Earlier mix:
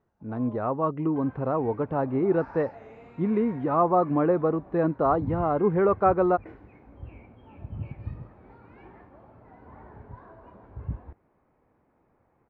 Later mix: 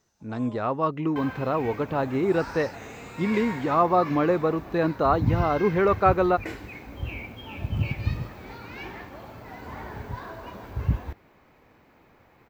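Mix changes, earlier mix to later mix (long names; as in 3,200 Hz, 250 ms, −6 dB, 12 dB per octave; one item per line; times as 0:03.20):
second sound +9.0 dB
master: remove low-pass filter 1,200 Hz 12 dB per octave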